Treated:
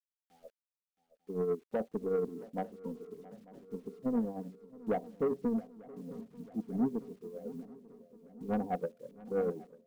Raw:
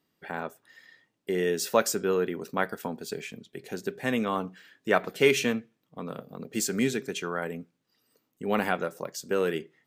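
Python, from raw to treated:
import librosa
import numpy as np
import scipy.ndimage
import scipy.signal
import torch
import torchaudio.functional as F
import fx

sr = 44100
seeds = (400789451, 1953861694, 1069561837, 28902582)

p1 = fx.law_mismatch(x, sr, coded='mu')
p2 = scipy.signal.sosfilt(scipy.signal.butter(12, 860.0, 'lowpass', fs=sr, output='sos'), p1)
p3 = fx.noise_reduce_blind(p2, sr, reduce_db=25)
p4 = fx.peak_eq(p3, sr, hz=520.0, db=-6.0, octaves=3.0)
p5 = p4 + 0.6 * np.pad(p4, (int(4.1 * sr / 1000.0), 0))[:len(p4)]
p6 = fx.level_steps(p5, sr, step_db=16)
p7 = p5 + F.gain(torch.from_numpy(p6), 2.0).numpy()
p8 = fx.tremolo_shape(p7, sr, shape='triangle', hz=9.4, depth_pct=55)
p9 = fx.quant_dither(p8, sr, seeds[0], bits=10, dither='none')
p10 = 10.0 ** (-23.0 / 20.0) * np.tanh(p9 / 10.0 ** (-23.0 / 20.0))
p11 = p10 + fx.echo_swing(p10, sr, ms=894, ratio=3, feedback_pct=62, wet_db=-14, dry=0)
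p12 = fx.upward_expand(p11, sr, threshold_db=-41.0, expansion=1.5)
y = F.gain(torch.from_numpy(p12), -1.0).numpy()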